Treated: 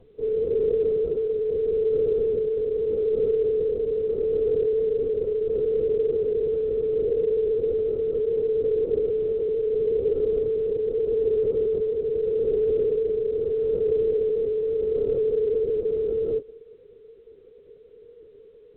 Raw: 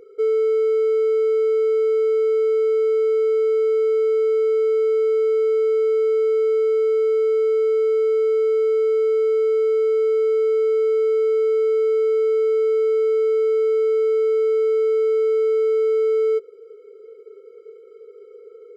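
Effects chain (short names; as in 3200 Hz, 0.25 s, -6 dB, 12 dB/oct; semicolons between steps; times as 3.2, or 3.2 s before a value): spectral contrast raised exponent 2; notches 60/120/180/240/300/360/420/480/540 Hz; Schroeder reverb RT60 0.99 s, combs from 30 ms, DRR 15 dB; rotary speaker horn 0.85 Hz; LPC vocoder at 8 kHz whisper; LPF 1300 Hz 24 dB/oct; bell 380 Hz -4.5 dB 1.2 oct; A-law 64 kbps 8000 Hz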